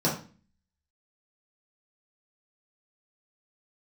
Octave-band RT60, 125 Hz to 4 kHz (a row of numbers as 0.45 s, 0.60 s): 0.55 s, 0.60 s, 0.40 s, 0.35 s, 0.40 s, 0.35 s